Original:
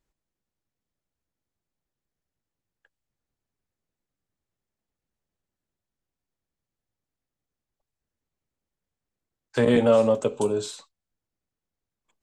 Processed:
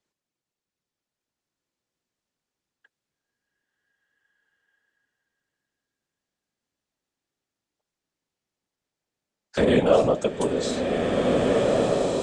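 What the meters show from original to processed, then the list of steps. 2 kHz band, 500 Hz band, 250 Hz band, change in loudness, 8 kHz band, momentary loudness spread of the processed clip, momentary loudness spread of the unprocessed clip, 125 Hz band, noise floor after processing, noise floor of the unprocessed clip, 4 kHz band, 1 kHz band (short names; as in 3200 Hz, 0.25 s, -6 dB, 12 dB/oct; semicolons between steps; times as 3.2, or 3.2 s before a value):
+4.0 dB, +2.5 dB, +2.5 dB, 0.0 dB, +3.5 dB, 7 LU, 13 LU, +3.5 dB, under -85 dBFS, under -85 dBFS, +5.5 dB, +5.5 dB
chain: HPF 150 Hz; high shelf 3400 Hz +9.5 dB; whisperiser; air absorption 70 m; bloom reverb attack 1.85 s, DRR -0.5 dB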